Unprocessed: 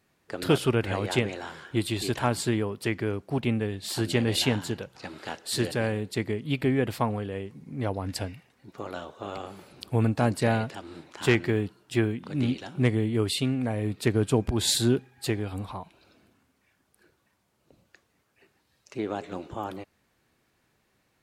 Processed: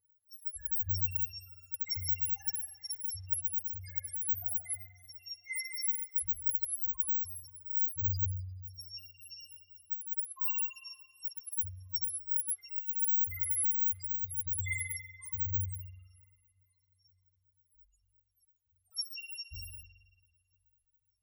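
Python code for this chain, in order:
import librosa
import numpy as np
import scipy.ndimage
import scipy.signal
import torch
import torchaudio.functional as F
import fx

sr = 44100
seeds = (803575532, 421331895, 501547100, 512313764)

y = fx.bit_reversed(x, sr, seeds[0], block=256)
y = fx.dereverb_blind(y, sr, rt60_s=0.54)
y = fx.spec_topn(y, sr, count=1)
y = fx.ripple_eq(y, sr, per_octave=0.89, db=13)
y = fx.echo_tape(y, sr, ms=493, feedback_pct=80, wet_db=-23.5, lp_hz=1100.0, drive_db=22.0, wow_cents=9)
y = fx.quant_float(y, sr, bits=6)
y = fx.over_compress(y, sr, threshold_db=-35.0, ratio=-0.5)
y = y + 0.99 * np.pad(y, (int(2.5 * sr / 1000.0), 0))[:len(y)]
y = fx.rev_spring(y, sr, rt60_s=1.4, pass_ms=(43,), chirp_ms=55, drr_db=-2.0)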